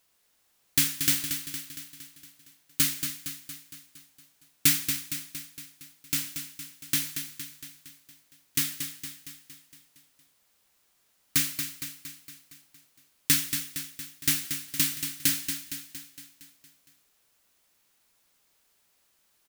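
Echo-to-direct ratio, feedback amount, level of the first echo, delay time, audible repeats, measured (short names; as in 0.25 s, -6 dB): -6.5 dB, 57%, -8.0 dB, 0.231 s, 6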